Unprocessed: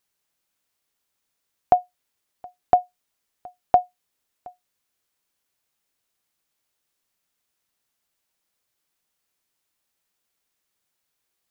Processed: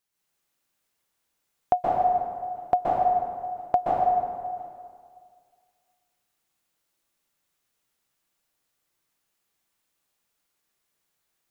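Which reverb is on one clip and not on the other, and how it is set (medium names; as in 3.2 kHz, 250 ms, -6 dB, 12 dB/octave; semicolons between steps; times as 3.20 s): plate-style reverb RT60 2 s, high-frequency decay 0.6×, pre-delay 115 ms, DRR -6.5 dB; trim -5.5 dB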